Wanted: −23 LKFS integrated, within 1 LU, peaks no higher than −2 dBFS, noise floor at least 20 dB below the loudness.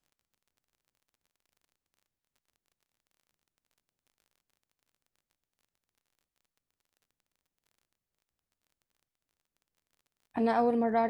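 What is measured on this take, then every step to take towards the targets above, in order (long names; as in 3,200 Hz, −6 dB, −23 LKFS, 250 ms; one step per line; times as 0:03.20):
crackle rate 27 per second; integrated loudness −28.0 LKFS; sample peak −16.5 dBFS; target loudness −23.0 LKFS
→ click removal
level +5 dB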